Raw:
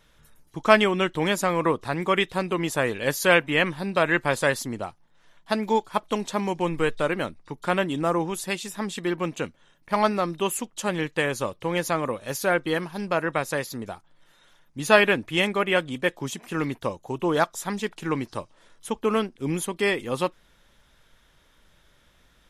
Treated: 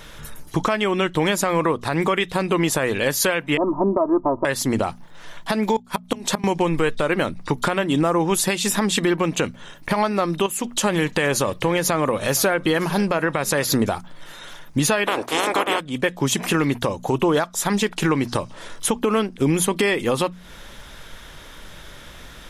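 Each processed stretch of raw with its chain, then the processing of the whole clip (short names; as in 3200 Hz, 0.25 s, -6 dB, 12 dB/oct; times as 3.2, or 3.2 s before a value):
3.57–4.45 rippled Chebyshev low-pass 1200 Hz, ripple 3 dB + comb 3.1 ms, depth 88%
5.76–6.44 high shelf 9600 Hz +5.5 dB + flipped gate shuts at -15 dBFS, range -25 dB
10.46–13.72 compressor 2:1, threshold -40 dBFS + echo 0.462 s -23.5 dB
15.06–15.79 spectral limiter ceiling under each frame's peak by 28 dB + HPF 100 Hz 6 dB/oct + band shelf 590 Hz +10.5 dB 2.6 oct
whole clip: notches 60/120/180/240 Hz; compressor 16:1, threshold -34 dBFS; maximiser +28 dB; gain -8.5 dB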